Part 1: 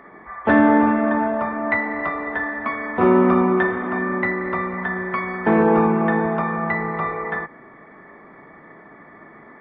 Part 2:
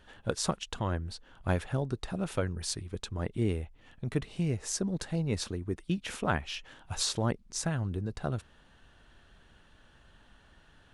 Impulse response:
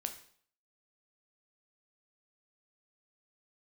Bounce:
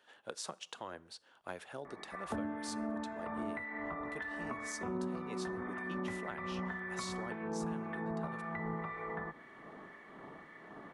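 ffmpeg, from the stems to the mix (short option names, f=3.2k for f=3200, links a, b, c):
-filter_complex "[0:a]acompressor=threshold=-24dB:ratio=5,acrossover=split=1600[a][b];[a]aeval=exprs='val(0)*(1-0.7/2+0.7/2*cos(2*PI*1.9*n/s))':c=same[c];[b]aeval=exprs='val(0)*(1-0.7/2-0.7/2*cos(2*PI*1.9*n/s))':c=same[d];[c][d]amix=inputs=2:normalize=0,adelay=1850,volume=-4.5dB[e];[1:a]highpass=420,volume=-7.5dB,asplit=2[f][g];[g]volume=-12dB[h];[2:a]atrim=start_sample=2205[i];[h][i]afir=irnorm=-1:irlink=0[j];[e][f][j]amix=inputs=3:normalize=0,acrossover=split=200[k][l];[l]acompressor=threshold=-39dB:ratio=5[m];[k][m]amix=inputs=2:normalize=0"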